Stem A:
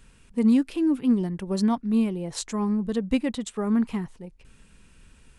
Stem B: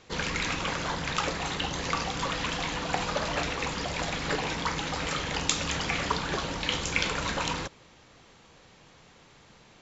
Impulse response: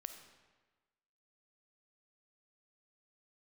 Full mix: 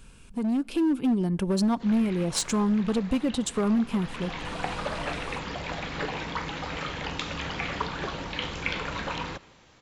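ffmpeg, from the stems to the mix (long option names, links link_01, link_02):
-filter_complex "[0:a]bandreject=frequency=1900:width=6,acompressor=threshold=-33dB:ratio=3,asoftclip=type=hard:threshold=-29dB,volume=2.5dB,asplit=2[link_01][link_02];[link_02]volume=-13.5dB[link_03];[1:a]acrossover=split=4100[link_04][link_05];[link_05]acompressor=threshold=-52dB:ratio=4:attack=1:release=60[link_06];[link_04][link_06]amix=inputs=2:normalize=0,adelay=1700,volume=-10dB,afade=type=in:start_time=3.96:duration=0.58:silence=0.281838,asplit=2[link_07][link_08];[link_08]volume=-5.5dB[link_09];[2:a]atrim=start_sample=2205[link_10];[link_03][link_09]amix=inputs=2:normalize=0[link_11];[link_11][link_10]afir=irnorm=-1:irlink=0[link_12];[link_01][link_07][link_12]amix=inputs=3:normalize=0,dynaudnorm=framelen=380:gausssize=3:maxgain=6dB"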